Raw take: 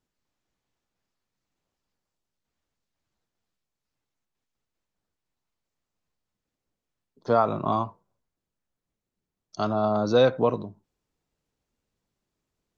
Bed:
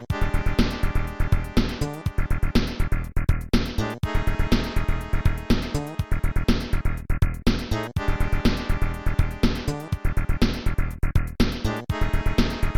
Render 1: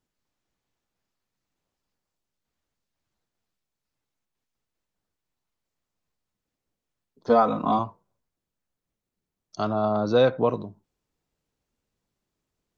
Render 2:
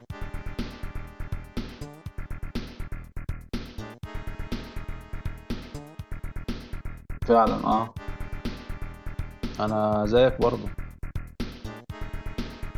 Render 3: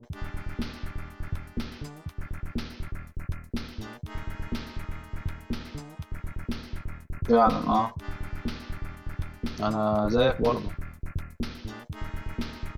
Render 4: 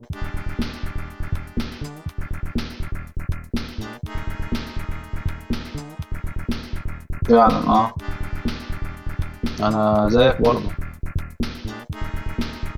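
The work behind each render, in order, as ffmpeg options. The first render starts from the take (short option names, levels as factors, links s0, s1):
-filter_complex "[0:a]asettb=1/sr,asplit=3[s0][s1][s2];[s0]atrim=end=7.294[s3];[s1]atrim=start=7.29:end=7.79,asetpts=PTS-STARTPTS,afade=t=in:d=0.004:c=qsin,afade=t=out:st=0.496:d=0.004:c=qsin,aecho=1:1:4:0.95,atrim=end_sample=22050[s4];[s2]atrim=start=7.786[s5];[s3][s4]acrossfade=d=0.004:c1=hsin:c2=qsin[s6];[s6][s5]acrossfade=d=0.004:c1=qsin:c2=hsin,asettb=1/sr,asplit=3[s7][s8][s9];[s7]atrim=end=9.624[s10];[s8]atrim=start=9.62:end=10.49,asetpts=PTS-STARTPTS,afade=t=in:d=0.004:c=qsin,afade=t=out:st=0.866:d=0.004:c=qsin,lowpass=4700[s11];[s9]atrim=start=10.486[s12];[s10][s11]acrossfade=d=0.004:c1=hsin:c2=qsin[s13];[s13][s12]acrossfade=d=0.004:c1=qsin:c2=hsin"
-filter_complex "[1:a]volume=0.251[s0];[0:a][s0]amix=inputs=2:normalize=0"
-filter_complex "[0:a]asplit=2[s0][s1];[s1]adelay=13,volume=0.266[s2];[s0][s2]amix=inputs=2:normalize=0,acrossover=split=510[s3][s4];[s4]adelay=30[s5];[s3][s5]amix=inputs=2:normalize=0"
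-af "volume=2.37,alimiter=limit=0.708:level=0:latency=1"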